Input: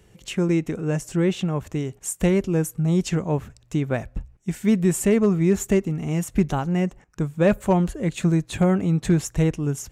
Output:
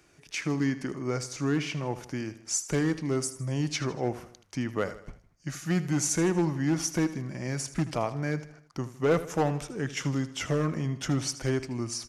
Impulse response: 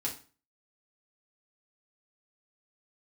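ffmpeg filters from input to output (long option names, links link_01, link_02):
-filter_complex "[0:a]asetrate=36162,aresample=44100,acrossover=split=120[link_01][link_02];[link_02]acontrast=30[link_03];[link_01][link_03]amix=inputs=2:normalize=0,volume=8dB,asoftclip=hard,volume=-8dB,lowshelf=frequency=280:gain=-11,aecho=1:1:79|158|237|316:0.188|0.0904|0.0434|0.0208,volume=-5.5dB"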